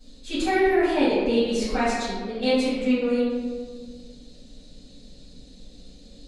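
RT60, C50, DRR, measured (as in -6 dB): 1.7 s, -2.0 dB, -16.0 dB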